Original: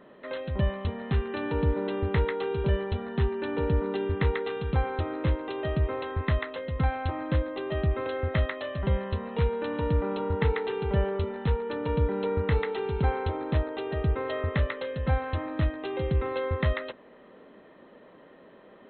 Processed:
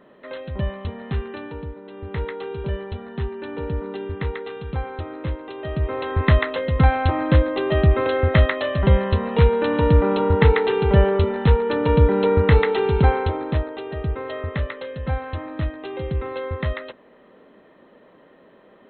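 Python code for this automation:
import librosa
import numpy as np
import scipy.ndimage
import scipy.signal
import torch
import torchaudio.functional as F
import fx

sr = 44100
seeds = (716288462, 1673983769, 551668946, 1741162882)

y = fx.gain(x, sr, db=fx.line((1.26, 1.0), (1.82, -11.5), (2.23, -1.0), (5.58, -1.0), (6.27, 10.5), (12.96, 10.5), (13.82, 1.0)))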